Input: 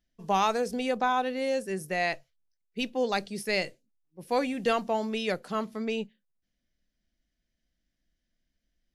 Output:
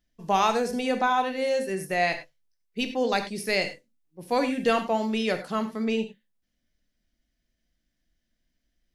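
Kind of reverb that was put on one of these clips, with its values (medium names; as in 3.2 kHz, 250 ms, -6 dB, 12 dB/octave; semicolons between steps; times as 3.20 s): gated-style reverb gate 120 ms flat, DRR 7.5 dB; trim +2.5 dB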